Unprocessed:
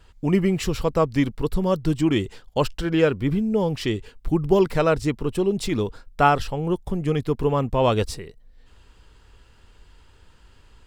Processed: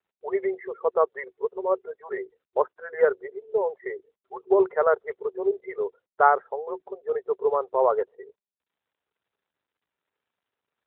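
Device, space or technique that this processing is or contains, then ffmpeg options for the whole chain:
mobile call with aggressive noise cancelling: -af "afftfilt=real='re*between(b*sr/4096,370,2200)':imag='im*between(b*sr/4096,370,2200)':win_size=4096:overlap=0.75,highpass=frequency=150:width=0.5412,highpass=frequency=150:width=1.3066,afftdn=noise_reduction=36:noise_floor=-33" -ar 8000 -c:a libopencore_amrnb -b:a 12200

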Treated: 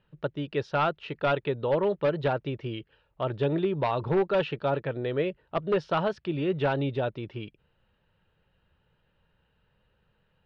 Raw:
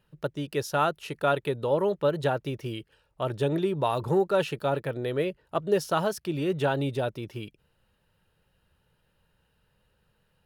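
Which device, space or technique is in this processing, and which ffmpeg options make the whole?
synthesiser wavefolder: -af "aeval=exprs='0.133*(abs(mod(val(0)/0.133+3,4)-2)-1)':channel_layout=same,lowpass=frequency=3700:width=0.5412,lowpass=frequency=3700:width=1.3066"

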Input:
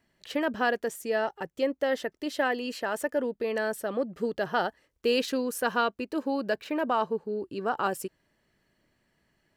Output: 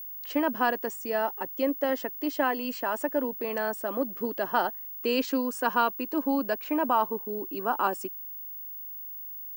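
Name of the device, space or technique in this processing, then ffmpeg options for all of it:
old television with a line whistle: -af "highpass=frequency=210:width=0.5412,highpass=frequency=210:width=1.3066,equalizer=frequency=280:width_type=q:width=4:gain=5,equalizer=frequency=450:width_type=q:width=4:gain=-4,equalizer=frequency=990:width_type=q:width=4:gain=7,equalizer=frequency=1800:width_type=q:width=4:gain=-3,equalizer=frequency=3700:width_type=q:width=4:gain=-7,lowpass=frequency=8700:width=0.5412,lowpass=frequency=8700:width=1.3066,aeval=exprs='val(0)+0.0141*sin(2*PI*15625*n/s)':channel_layout=same"

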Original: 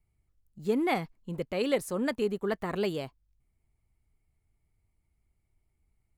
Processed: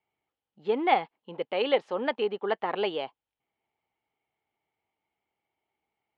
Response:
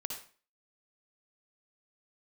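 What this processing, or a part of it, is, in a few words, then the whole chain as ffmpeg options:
phone earpiece: -af "highpass=380,equalizer=frequency=480:width_type=q:width=4:gain=3,equalizer=frequency=830:width_type=q:width=4:gain=10,equalizer=frequency=3100:width_type=q:width=4:gain=7,lowpass=frequency=3600:width=0.5412,lowpass=frequency=3600:width=1.3066,volume=2dB"

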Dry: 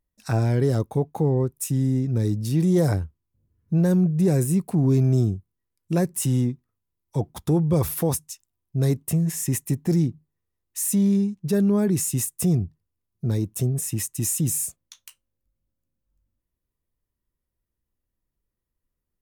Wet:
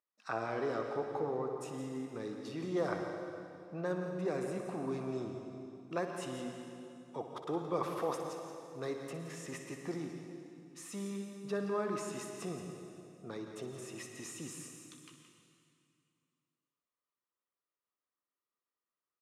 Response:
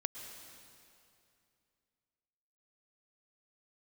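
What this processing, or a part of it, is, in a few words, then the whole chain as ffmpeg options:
station announcement: -filter_complex "[0:a]highpass=480,lowpass=3600,equalizer=frequency=1200:width_type=o:width=0.33:gain=11,aecho=1:1:61.22|172:0.282|0.282[link_01];[1:a]atrim=start_sample=2205[link_02];[link_01][link_02]afir=irnorm=-1:irlink=0,volume=-6dB"

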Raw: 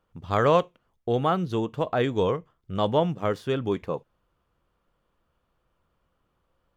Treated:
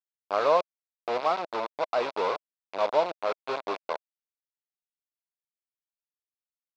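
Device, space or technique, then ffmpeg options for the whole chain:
hand-held game console: -af "acrusher=bits=3:mix=0:aa=0.000001,highpass=490,equalizer=frequency=630:width_type=q:width=4:gain=6,equalizer=frequency=1000:width_type=q:width=4:gain=4,equalizer=frequency=1800:width_type=q:width=4:gain=-9,equalizer=frequency=3100:width_type=q:width=4:gain=-9,lowpass=frequency=4000:width=0.5412,lowpass=frequency=4000:width=1.3066,volume=-3.5dB"

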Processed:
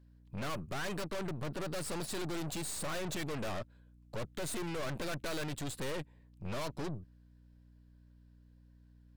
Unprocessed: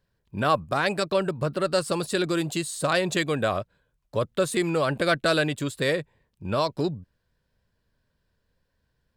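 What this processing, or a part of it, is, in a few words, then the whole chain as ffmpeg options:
valve amplifier with mains hum: -af "aeval=exprs='(tanh(79.4*val(0)+0.8)-tanh(0.8))/79.4':channel_layout=same,aeval=exprs='val(0)+0.001*(sin(2*PI*60*n/s)+sin(2*PI*2*60*n/s)/2+sin(2*PI*3*60*n/s)/3+sin(2*PI*4*60*n/s)/4+sin(2*PI*5*60*n/s)/5)':channel_layout=same,volume=1dB"

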